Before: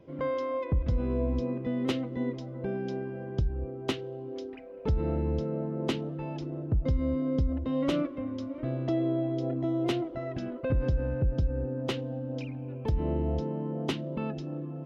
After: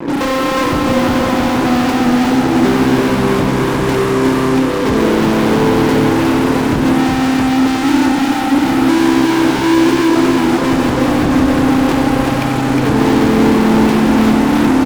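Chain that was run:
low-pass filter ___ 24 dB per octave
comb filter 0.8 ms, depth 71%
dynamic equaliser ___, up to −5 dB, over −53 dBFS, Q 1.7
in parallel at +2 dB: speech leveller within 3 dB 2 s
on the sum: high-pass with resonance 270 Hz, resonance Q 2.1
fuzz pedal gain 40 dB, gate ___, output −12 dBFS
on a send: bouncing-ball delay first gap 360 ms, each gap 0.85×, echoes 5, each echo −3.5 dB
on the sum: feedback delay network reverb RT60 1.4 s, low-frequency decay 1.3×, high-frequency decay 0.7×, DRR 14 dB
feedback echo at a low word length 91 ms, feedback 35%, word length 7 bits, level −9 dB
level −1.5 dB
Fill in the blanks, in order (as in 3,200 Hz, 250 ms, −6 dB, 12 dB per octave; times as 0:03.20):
2,200 Hz, 1,400 Hz, −47 dBFS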